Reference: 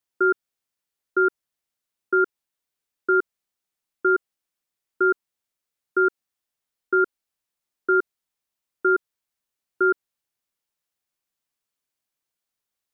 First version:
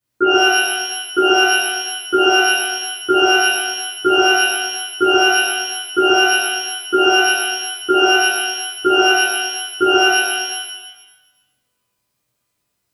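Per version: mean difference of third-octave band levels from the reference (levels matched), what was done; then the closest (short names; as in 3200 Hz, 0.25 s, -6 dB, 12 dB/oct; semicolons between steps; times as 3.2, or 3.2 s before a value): 12.0 dB: bell 110 Hz +13.5 dB 2.7 oct; compressor, threshold -17 dBFS, peak gain reduction 5 dB; shimmer reverb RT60 1.1 s, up +12 st, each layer -2 dB, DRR -11.5 dB; gain -2 dB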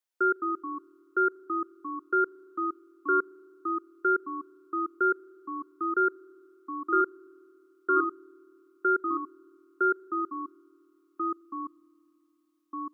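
1.5 dB: Bessel high-pass 370 Hz, order 2; spring tank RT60 2.8 s, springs 37 ms, chirp 60 ms, DRR 19 dB; echoes that change speed 0.188 s, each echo -2 st, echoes 2, each echo -6 dB; gain -4 dB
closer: second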